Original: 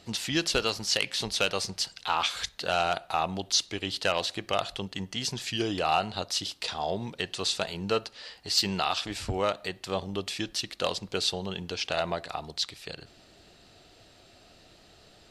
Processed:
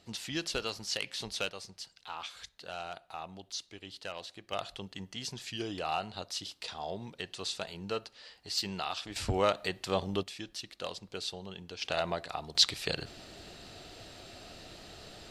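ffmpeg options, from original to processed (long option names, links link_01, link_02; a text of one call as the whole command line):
ffmpeg -i in.wav -af "asetnsamples=nb_out_samples=441:pad=0,asendcmd='1.49 volume volume -14.5dB;4.52 volume volume -8dB;9.16 volume volume 0dB;10.23 volume volume -10dB;11.82 volume volume -3dB;12.55 volume volume 6.5dB',volume=-8dB" out.wav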